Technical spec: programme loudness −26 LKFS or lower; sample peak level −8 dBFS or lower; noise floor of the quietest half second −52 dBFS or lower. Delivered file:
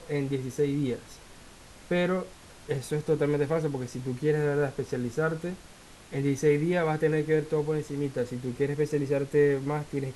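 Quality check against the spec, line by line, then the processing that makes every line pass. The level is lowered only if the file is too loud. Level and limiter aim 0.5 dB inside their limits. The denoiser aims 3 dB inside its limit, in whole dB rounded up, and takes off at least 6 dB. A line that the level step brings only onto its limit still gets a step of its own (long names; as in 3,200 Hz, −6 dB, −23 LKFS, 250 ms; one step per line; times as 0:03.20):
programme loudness −28.5 LKFS: in spec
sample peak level −12.5 dBFS: in spec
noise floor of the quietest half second −50 dBFS: out of spec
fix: broadband denoise 6 dB, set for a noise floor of −50 dBFS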